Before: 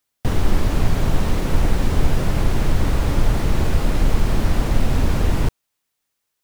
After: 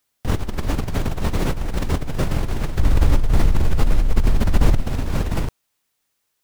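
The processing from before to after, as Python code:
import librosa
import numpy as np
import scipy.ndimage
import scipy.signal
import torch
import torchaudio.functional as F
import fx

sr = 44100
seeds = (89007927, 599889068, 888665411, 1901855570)

y = fx.over_compress(x, sr, threshold_db=-20.0, ratio=-1.0)
y = fx.low_shelf(y, sr, hz=86.0, db=9.5, at=(2.79, 4.82))
y = F.gain(torch.from_numpy(y), -1.0).numpy()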